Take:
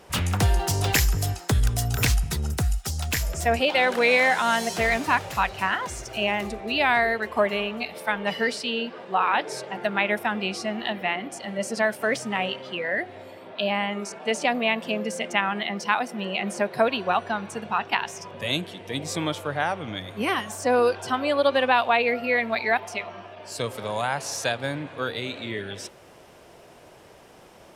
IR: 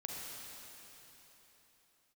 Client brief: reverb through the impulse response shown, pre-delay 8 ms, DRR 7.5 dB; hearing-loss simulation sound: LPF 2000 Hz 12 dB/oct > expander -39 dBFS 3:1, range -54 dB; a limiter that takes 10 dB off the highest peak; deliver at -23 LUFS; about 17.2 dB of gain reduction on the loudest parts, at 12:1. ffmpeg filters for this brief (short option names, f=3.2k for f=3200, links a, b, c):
-filter_complex "[0:a]acompressor=threshold=-34dB:ratio=12,alimiter=level_in=4.5dB:limit=-24dB:level=0:latency=1,volume=-4.5dB,asplit=2[a][b];[1:a]atrim=start_sample=2205,adelay=8[c];[b][c]afir=irnorm=-1:irlink=0,volume=-7.5dB[d];[a][d]amix=inputs=2:normalize=0,lowpass=2k,agate=range=-54dB:threshold=-39dB:ratio=3,volume=17.5dB"